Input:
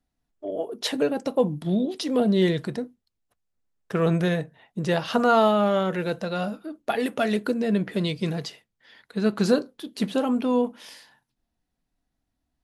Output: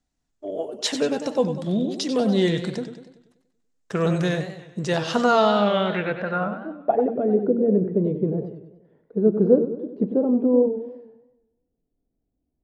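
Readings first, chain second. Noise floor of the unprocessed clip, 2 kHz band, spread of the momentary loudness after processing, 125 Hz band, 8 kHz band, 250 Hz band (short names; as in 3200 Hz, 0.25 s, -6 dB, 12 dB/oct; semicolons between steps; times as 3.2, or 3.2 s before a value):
-80 dBFS, +0.5 dB, 13 LU, +1.0 dB, n/a, +2.0 dB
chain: low-pass sweep 7300 Hz -> 440 Hz, 5.21–7.2; warbling echo 96 ms, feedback 51%, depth 133 cents, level -9.5 dB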